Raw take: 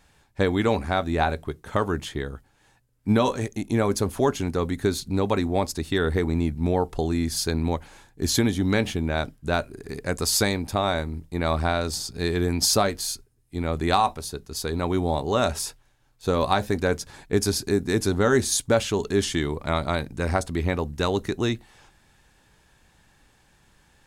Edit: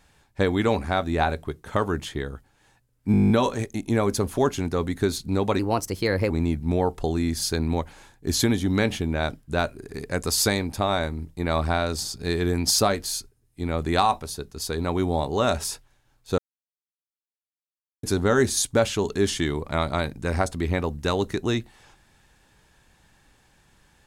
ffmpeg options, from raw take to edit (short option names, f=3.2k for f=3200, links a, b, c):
-filter_complex "[0:a]asplit=14[a][b][c][d][e][f][g][h][i][j][k][l][m][n];[a]atrim=end=3.142[o];[b]atrim=start=3.118:end=3.142[p];[c]atrim=start=3.118:end=3.142[q];[d]atrim=start=3.118:end=3.142[r];[e]atrim=start=3.118:end=3.142[s];[f]atrim=start=3.118:end=3.142[t];[g]atrim=start=3.118:end=3.142[u];[h]atrim=start=3.118:end=3.142[v];[i]atrim=start=3.118:end=3.142[w];[j]atrim=start=3.118:end=5.414[x];[k]atrim=start=5.41:end=6.25,asetpts=PTS-STARTPTS,asetrate=52038,aresample=44100,atrim=end_sample=31393,asetpts=PTS-STARTPTS[y];[l]atrim=start=6.246:end=16.33,asetpts=PTS-STARTPTS,afade=t=out:st=10.08:d=0.004:c=hsin[z];[m]atrim=start=16.33:end=17.98,asetpts=PTS-STARTPTS,volume=0[aa];[n]atrim=start=17.98,asetpts=PTS-STARTPTS,afade=t=in:d=0.004:c=hsin[ab];[o][p]acrossfade=d=0.004:c1=hsin:c2=hsin[ac];[ac][q]acrossfade=d=0.004:c1=hsin:c2=hsin[ad];[ad][r]acrossfade=d=0.004:c1=hsin:c2=hsin[ae];[ae][s]acrossfade=d=0.004:c1=hsin:c2=hsin[af];[af][t]acrossfade=d=0.004:c1=hsin:c2=hsin[ag];[ag][u]acrossfade=d=0.004:c1=hsin:c2=hsin[ah];[ah][v]acrossfade=d=0.004:c1=hsin:c2=hsin[ai];[ai][w]acrossfade=d=0.004:c1=hsin:c2=hsin[aj];[aj][x]acrossfade=d=0.004:c1=hsin:c2=hsin[ak];[ak][y]acrossfade=d=0.004:c1=hsin:c2=hsin[al];[z][aa][ab]concat=n=3:v=0:a=1[am];[al][am]acrossfade=d=0.004:c1=hsin:c2=hsin"